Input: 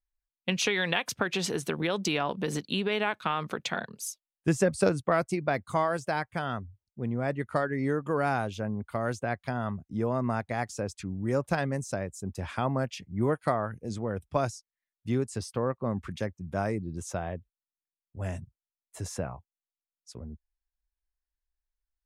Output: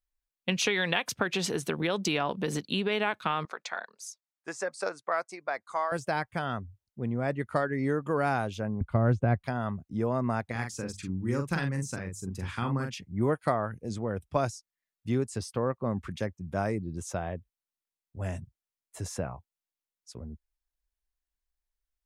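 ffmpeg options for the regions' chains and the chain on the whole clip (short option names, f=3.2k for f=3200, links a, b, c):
-filter_complex "[0:a]asettb=1/sr,asplit=3[a][b][c];[a]atrim=end=3.454[d];[b]atrim=start=3.45:end=5.92,asetpts=PTS-STARTPTS,afade=t=in:d=0.004:c=qsin,afade=t=out:st=2.466:d=0.004:c=qsin,highpass=770,lowpass=6.4k,equalizer=f=3k:w=2:g=-11[e];[c]atrim=start=5.916[f];[d][e]acrossfade=d=0.004:c1=hsin:c2=qsin[g];[g][f]acrossfade=d=0.004:c1=qsin:c2=hsin,asettb=1/sr,asplit=3[h][i][j];[h]atrim=end=8.814[k];[i]atrim=start=8.81:end=9.44,asetpts=PTS-STARTPTS,afade=t=in:d=0.004:c=qsin,afade=t=out:st=0.626:d=0.004:c=qsin,acrossover=split=4000[l][m];[m]acompressor=threshold=-51dB:ratio=4:attack=1:release=60[n];[l][n]amix=inputs=2:normalize=0,aemphasis=mode=reproduction:type=riaa,bandreject=f=1.8k:w=25[o];[j]atrim=start=9.436[p];[k][o]acrossfade=d=0.004:c1=hsin:c2=qsin[q];[q][p]acrossfade=d=0.004:c1=qsin:c2=hsin,asettb=1/sr,asplit=3[r][s][t];[r]atrim=end=10.514[u];[s]atrim=start=10.51:end=12.95,asetpts=PTS-STARTPTS,afade=t=in:d=0.004:c=qsin,afade=t=out:st=2.436:d=0.004:c=qsin,equalizer=f=640:t=o:w=0.64:g=-14.5,bandreject=f=50:t=h:w=6,bandreject=f=100:t=h:w=6,bandreject=f=150:t=h:w=6,bandreject=f=200:t=h:w=6,asplit=2[v][w];[w]adelay=43,volume=-5.5dB[x];[v][x]amix=inputs=2:normalize=0,atrim=end_sample=107604[y];[t]atrim=start=12.946[z];[u][y]acrossfade=d=0.004:c1=hsin:c2=qsin[aa];[aa][z]acrossfade=d=0.004:c1=qsin:c2=hsin"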